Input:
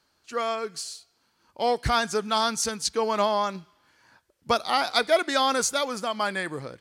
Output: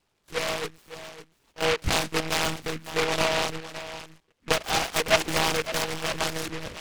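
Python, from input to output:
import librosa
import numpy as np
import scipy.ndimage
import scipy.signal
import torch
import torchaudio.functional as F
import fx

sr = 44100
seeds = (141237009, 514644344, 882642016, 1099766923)

y = fx.high_shelf(x, sr, hz=3100.0, db=-12.0)
y = y + 10.0 ** (-13.0 / 20.0) * np.pad(y, (int(557 * sr / 1000.0), 0))[:len(y)]
y = fx.lpc_monotone(y, sr, seeds[0], pitch_hz=160.0, order=16)
y = fx.noise_mod_delay(y, sr, seeds[1], noise_hz=1800.0, depth_ms=0.21)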